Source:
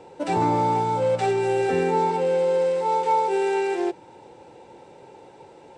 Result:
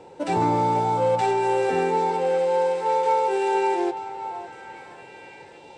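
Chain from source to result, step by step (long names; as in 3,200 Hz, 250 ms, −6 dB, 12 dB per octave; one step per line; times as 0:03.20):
0:01.21–0:03.55: low-shelf EQ 200 Hz −7.5 dB
echo through a band-pass that steps 556 ms, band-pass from 810 Hz, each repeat 0.7 octaves, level −4.5 dB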